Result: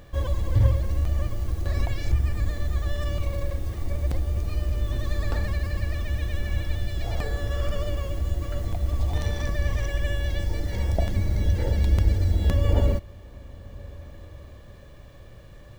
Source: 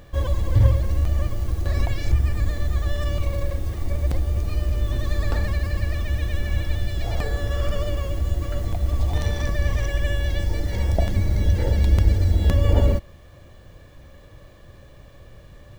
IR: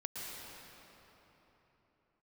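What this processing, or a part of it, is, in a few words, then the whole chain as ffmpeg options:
ducked reverb: -filter_complex "[0:a]asplit=3[link_01][link_02][link_03];[1:a]atrim=start_sample=2205[link_04];[link_02][link_04]afir=irnorm=-1:irlink=0[link_05];[link_03]apad=whole_len=696293[link_06];[link_05][link_06]sidechaincompress=threshold=-33dB:ratio=8:attack=16:release=772,volume=-7.5dB[link_07];[link_01][link_07]amix=inputs=2:normalize=0,volume=-3.5dB"

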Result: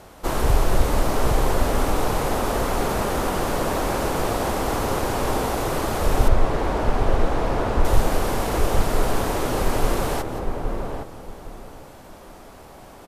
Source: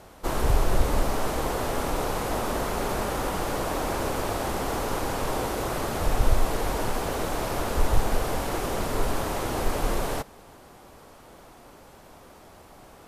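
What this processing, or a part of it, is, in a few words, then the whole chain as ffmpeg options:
ducked delay: -filter_complex "[0:a]asplit=3[link_01][link_02][link_03];[link_02]adelay=174,volume=-8dB[link_04];[link_03]apad=whole_len=584187[link_05];[link_04][link_05]sidechaincompress=threshold=-37dB:ratio=8:attack=16:release=296[link_06];[link_01][link_06]amix=inputs=2:normalize=0,asettb=1/sr,asplit=3[link_07][link_08][link_09];[link_07]atrim=end=6.284[link_10];[link_08]atrim=start=6.28:end=7.85,asetpts=PTS-STARTPTS,afade=type=in:duration=0.004:curve=qsin,afade=type=out:start_time=1.566:duration=0.004:curve=qsin,aemphasis=mode=reproduction:type=75fm[link_11];[link_09]atrim=start=7.846[link_12];[link_10][link_11]acrossfade=duration=0.004:curve1=hsin:curve2=qsin[link_13];[link_13][link_12]acrossfade=duration=0.004:curve1=qsin:curve2=hsin,asplit=2[link_14][link_15];[link_15]adelay=812,lowpass=frequency=880:poles=1,volume=-3dB,asplit=2[link_16][link_17];[link_17]adelay=812,lowpass=frequency=880:poles=1,volume=0.24,asplit=2[link_18][link_19];[link_19]adelay=812,lowpass=frequency=880:poles=1,volume=0.24[link_20];[link_14][link_16][link_18][link_20]amix=inputs=4:normalize=0,volume=3.5dB"

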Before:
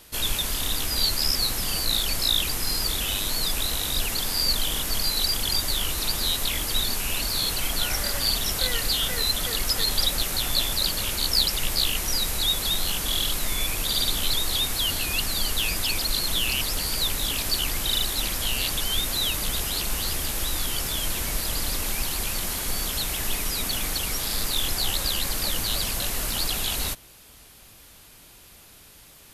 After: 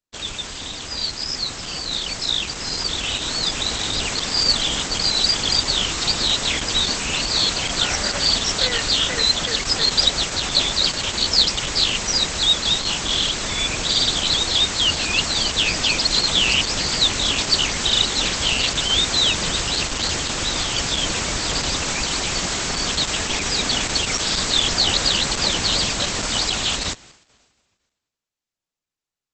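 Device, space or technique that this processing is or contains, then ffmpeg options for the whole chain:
video call: -af "highpass=frequency=110:poles=1,dynaudnorm=framelen=820:gausssize=7:maxgain=11.5dB,agate=range=-44dB:threshold=-41dB:ratio=16:detection=peak" -ar 48000 -c:a libopus -b:a 12k

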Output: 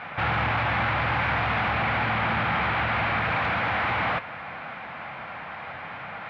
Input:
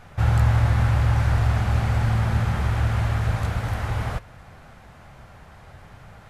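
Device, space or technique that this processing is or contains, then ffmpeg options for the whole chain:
overdrive pedal into a guitar cabinet: -filter_complex "[0:a]asplit=2[link_01][link_02];[link_02]highpass=frequency=720:poles=1,volume=30dB,asoftclip=type=tanh:threshold=-7.5dB[link_03];[link_01][link_03]amix=inputs=2:normalize=0,lowpass=frequency=2100:poles=1,volume=-6dB,highpass=94,equalizer=frequency=110:width_type=q:width=4:gain=-5,equalizer=frequency=400:width_type=q:width=4:gain=-8,equalizer=frequency=590:width_type=q:width=4:gain=-3,equalizer=frequency=2300:width_type=q:width=4:gain=6,lowpass=frequency=3700:width=0.5412,lowpass=frequency=3700:width=1.3066,asettb=1/sr,asplit=3[link_04][link_05][link_06];[link_04]atrim=end=1.714[link_07];[link_05]atrim=start=1.71:end=3.27,asetpts=PTS-STARTPTS,afade=type=in:duration=0.004:curve=qsin,afade=type=out:start_time=1.556:duration=0.004:curve=qsin,lowpass=7100[link_08];[link_06]atrim=start=3.266[link_09];[link_07][link_08]acrossfade=duration=0.004:curve1=hsin:curve2=qsin[link_10];[link_10][link_09]acrossfade=duration=0.004:curve1=qsin:curve2=hsin,volume=-7.5dB"

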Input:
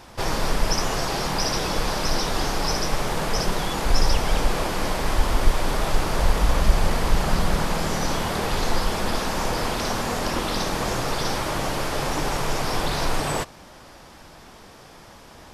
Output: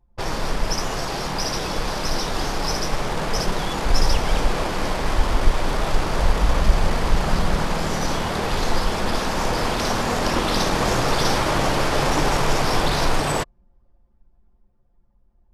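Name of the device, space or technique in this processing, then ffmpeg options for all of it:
voice memo with heavy noise removal: -af "anlmdn=39.8,dynaudnorm=framelen=360:gausssize=17:maxgain=9.5dB,volume=-1dB"

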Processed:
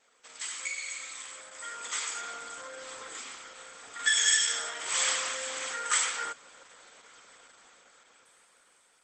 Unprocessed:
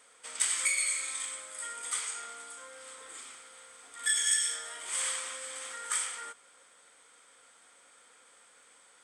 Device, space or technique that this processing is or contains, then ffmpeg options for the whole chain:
video call: -af "highpass=frequency=130:width=0.5412,highpass=frequency=130:width=1.3066,dynaudnorm=framelen=280:gausssize=13:maxgain=15dB,volume=-4dB" -ar 48000 -c:a libopus -b:a 12k

